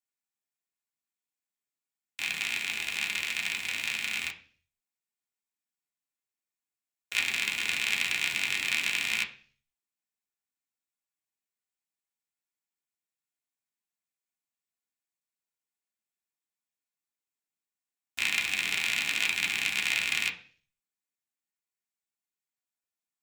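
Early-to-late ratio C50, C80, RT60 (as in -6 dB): 13.0 dB, 17.5 dB, 0.45 s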